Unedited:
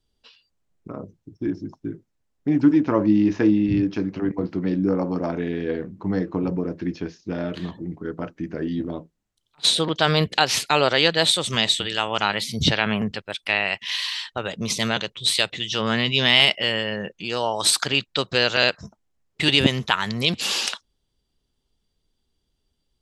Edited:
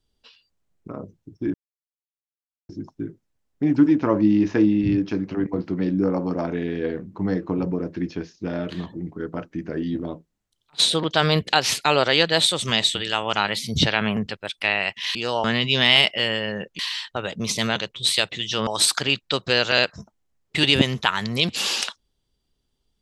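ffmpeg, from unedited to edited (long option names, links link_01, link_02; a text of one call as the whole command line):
ffmpeg -i in.wav -filter_complex "[0:a]asplit=6[link_01][link_02][link_03][link_04][link_05][link_06];[link_01]atrim=end=1.54,asetpts=PTS-STARTPTS,afade=type=out:start_time=1.536:duration=0.004:curve=hsin,apad=pad_dur=1.15[link_07];[link_02]atrim=start=1.54:end=14.002,asetpts=PTS-STARTPTS,afade=type=in:duration=0.004:curve=hsin[link_08];[link_03]atrim=start=17.228:end=17.522[link_09];[link_04]atrim=start=15.878:end=17.232[link_10];[link_05]atrim=start=13.998:end=15.882[link_11];[link_06]atrim=start=17.518[link_12];[link_07][link_08]concat=n=2:v=0:a=1[link_13];[link_13][link_09]acrossfade=duration=0.004:curve1=hsin:curve2=hsin[link_14];[link_14][link_10]acrossfade=duration=0.004:curve1=hsin:curve2=hsin[link_15];[link_15][link_11]acrossfade=duration=0.004:curve1=hsin:curve2=hsin[link_16];[link_16][link_12]acrossfade=duration=0.004:curve1=hsin:curve2=hsin" out.wav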